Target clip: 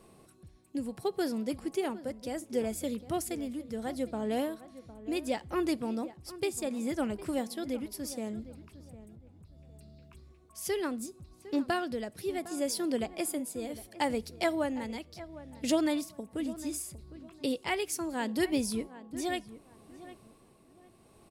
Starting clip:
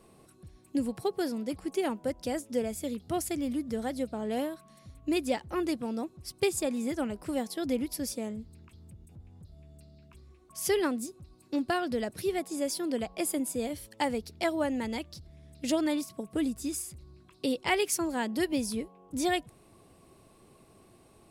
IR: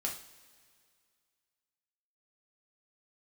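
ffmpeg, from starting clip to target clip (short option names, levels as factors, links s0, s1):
-filter_complex "[0:a]tremolo=f=0.7:d=0.5,asplit=2[s0][s1];[s1]adelay=757,lowpass=f=1900:p=1,volume=0.168,asplit=2[s2][s3];[s3]adelay=757,lowpass=f=1900:p=1,volume=0.27,asplit=2[s4][s5];[s5]adelay=757,lowpass=f=1900:p=1,volume=0.27[s6];[s0][s2][s4][s6]amix=inputs=4:normalize=0,asplit=2[s7][s8];[1:a]atrim=start_sample=2205,afade=t=out:st=0.27:d=0.01,atrim=end_sample=12348[s9];[s8][s9]afir=irnorm=-1:irlink=0,volume=0.0891[s10];[s7][s10]amix=inputs=2:normalize=0"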